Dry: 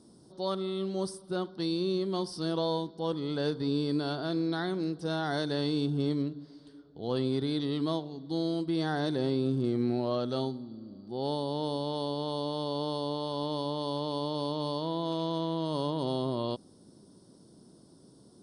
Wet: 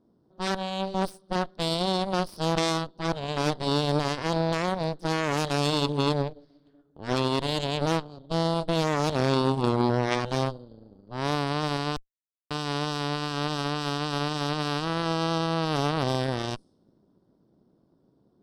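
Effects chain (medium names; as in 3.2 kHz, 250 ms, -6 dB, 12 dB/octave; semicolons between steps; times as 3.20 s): level-controlled noise filter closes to 1.9 kHz, open at -29.5 dBFS; Chebyshev shaper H 2 -7 dB, 3 -10 dB, 4 -9 dB, 7 -31 dB, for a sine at -18.5 dBFS; 11.96–12.51 s: Schmitt trigger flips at -33 dBFS; trim +9 dB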